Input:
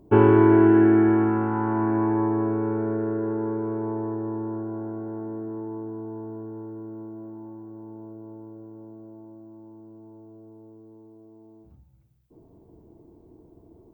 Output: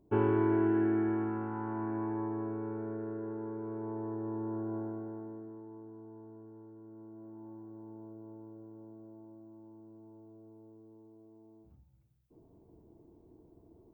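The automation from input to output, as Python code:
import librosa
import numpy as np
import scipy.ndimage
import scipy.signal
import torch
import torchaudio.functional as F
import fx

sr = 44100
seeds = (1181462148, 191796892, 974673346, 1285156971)

y = fx.gain(x, sr, db=fx.line((3.52, -12.5), (4.76, -4.5), (5.61, -15.0), (6.79, -15.0), (7.53, -7.5)))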